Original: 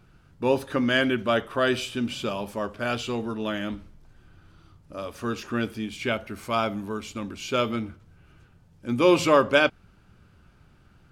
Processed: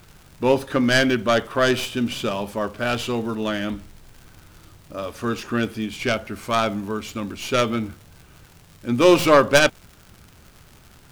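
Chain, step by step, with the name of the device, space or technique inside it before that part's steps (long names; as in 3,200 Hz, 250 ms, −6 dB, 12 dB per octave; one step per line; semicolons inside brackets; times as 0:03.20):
record under a worn stylus (stylus tracing distortion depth 0.16 ms; surface crackle 130 per second −40 dBFS; pink noise bed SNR 32 dB)
level +4.5 dB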